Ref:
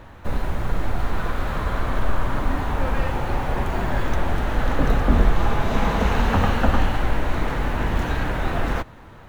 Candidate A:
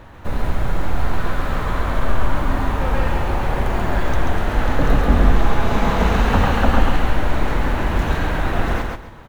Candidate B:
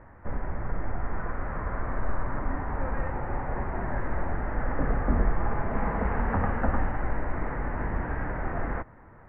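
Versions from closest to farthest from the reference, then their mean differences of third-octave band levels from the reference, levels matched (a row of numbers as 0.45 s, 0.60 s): A, B; 1.5 dB, 9.0 dB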